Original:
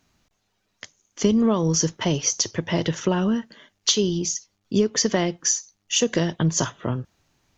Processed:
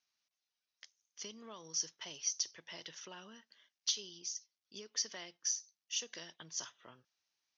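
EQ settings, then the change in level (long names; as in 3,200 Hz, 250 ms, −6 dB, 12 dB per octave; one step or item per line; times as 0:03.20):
resonant band-pass 5,800 Hz, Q 3.6
high-frequency loss of the air 270 metres
+4.0 dB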